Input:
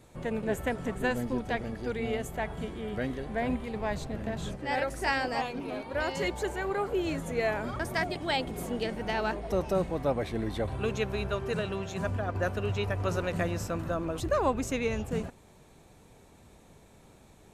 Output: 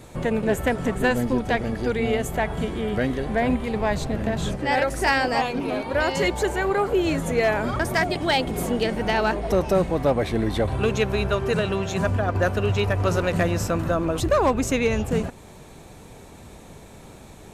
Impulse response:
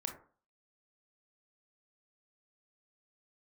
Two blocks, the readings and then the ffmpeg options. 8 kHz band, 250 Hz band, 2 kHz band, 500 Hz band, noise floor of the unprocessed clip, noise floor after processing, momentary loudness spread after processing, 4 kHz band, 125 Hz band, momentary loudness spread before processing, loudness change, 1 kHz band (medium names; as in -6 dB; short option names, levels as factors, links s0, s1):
+9.5 dB, +9.0 dB, +8.5 dB, +8.5 dB, -57 dBFS, -45 dBFS, 5 LU, +8.5 dB, +9.0 dB, 6 LU, +8.5 dB, +8.5 dB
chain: -filter_complex "[0:a]asplit=2[s0][s1];[s1]acompressor=threshold=0.0141:ratio=12,volume=0.891[s2];[s0][s2]amix=inputs=2:normalize=0,asoftclip=type=hard:threshold=0.112,volume=2.11"